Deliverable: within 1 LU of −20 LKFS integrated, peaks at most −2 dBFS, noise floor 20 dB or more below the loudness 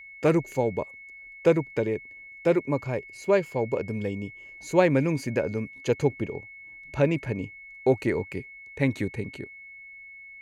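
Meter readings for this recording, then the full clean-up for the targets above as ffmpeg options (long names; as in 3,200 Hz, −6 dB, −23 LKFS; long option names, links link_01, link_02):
interfering tone 2,200 Hz; level of the tone −43 dBFS; integrated loudness −27.0 LKFS; sample peak −6.5 dBFS; target loudness −20.0 LKFS
→ -af "bandreject=frequency=2200:width=30"
-af "volume=7dB,alimiter=limit=-2dB:level=0:latency=1"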